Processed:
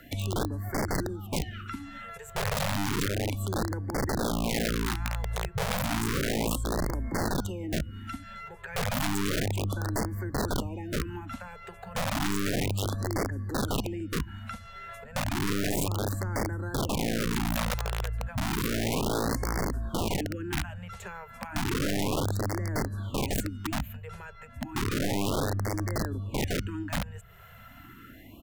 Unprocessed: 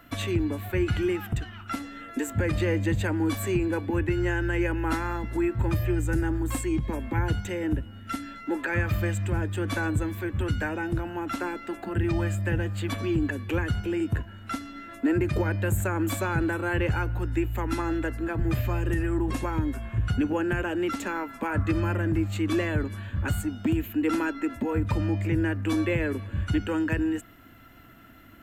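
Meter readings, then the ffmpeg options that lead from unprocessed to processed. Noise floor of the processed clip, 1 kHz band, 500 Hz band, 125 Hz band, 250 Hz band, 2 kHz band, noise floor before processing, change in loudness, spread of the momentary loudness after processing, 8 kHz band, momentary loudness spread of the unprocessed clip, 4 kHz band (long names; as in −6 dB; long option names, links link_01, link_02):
−49 dBFS, 0.0 dB, −3.5 dB, −4.0 dB, −5.5 dB, −4.0 dB, −45 dBFS, −3.0 dB, 13 LU, +5.5 dB, 6 LU, +5.5 dB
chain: -filter_complex "[0:a]equalizer=frequency=5000:width_type=o:width=0.26:gain=-3,acrossover=split=180[link_01][link_02];[link_01]aeval=exprs='0.133*(cos(1*acos(clip(val(0)/0.133,-1,1)))-cos(1*PI/2))+0.0237*(cos(2*acos(clip(val(0)/0.133,-1,1)))-cos(2*PI/2))+0.00668*(cos(8*acos(clip(val(0)/0.133,-1,1)))-cos(8*PI/2))':channel_layout=same[link_03];[link_02]acompressor=threshold=-40dB:ratio=16[link_04];[link_03][link_04]amix=inputs=2:normalize=0,asplit=2[link_05][link_06];[link_06]adelay=145,lowpass=frequency=3200:poles=1,volume=-23dB,asplit=2[link_07][link_08];[link_08]adelay=145,lowpass=frequency=3200:poles=1,volume=0.23[link_09];[link_05][link_07][link_09]amix=inputs=3:normalize=0,aeval=exprs='(mod(20*val(0)+1,2)-1)/20':channel_layout=same,afftfilt=real='re*(1-between(b*sr/1024,270*pow(3200/270,0.5+0.5*sin(2*PI*0.32*pts/sr))/1.41,270*pow(3200/270,0.5+0.5*sin(2*PI*0.32*pts/sr))*1.41))':imag='im*(1-between(b*sr/1024,270*pow(3200/270,0.5+0.5*sin(2*PI*0.32*pts/sr))/1.41,270*pow(3200/270,0.5+0.5*sin(2*PI*0.32*pts/sr))*1.41))':win_size=1024:overlap=0.75,volume=3dB"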